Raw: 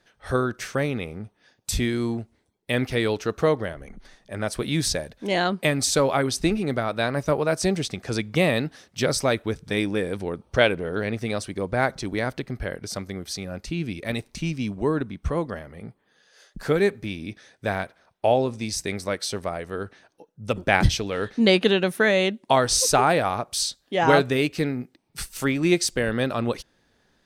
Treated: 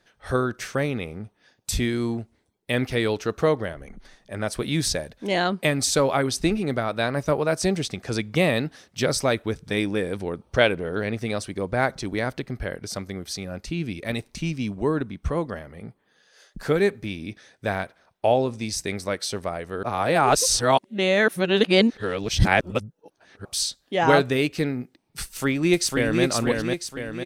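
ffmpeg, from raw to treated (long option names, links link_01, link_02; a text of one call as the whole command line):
ffmpeg -i in.wav -filter_complex "[0:a]asplit=2[link_01][link_02];[link_02]afade=type=in:start_time=25.23:duration=0.01,afade=type=out:start_time=26.23:duration=0.01,aecho=0:1:500|1000|1500|2000|2500|3000|3500:0.707946|0.353973|0.176986|0.0884932|0.0442466|0.0221233|0.0110617[link_03];[link_01][link_03]amix=inputs=2:normalize=0,asplit=3[link_04][link_05][link_06];[link_04]atrim=end=19.832[link_07];[link_05]atrim=start=19.828:end=23.452,asetpts=PTS-STARTPTS,areverse[link_08];[link_06]atrim=start=23.448[link_09];[link_07][link_08]acrossfade=duration=0.004:curve1=hsin:curve2=hsin[link_10];[link_10][link_09]acrossfade=duration=0.004:curve1=hsin:curve2=hsin" out.wav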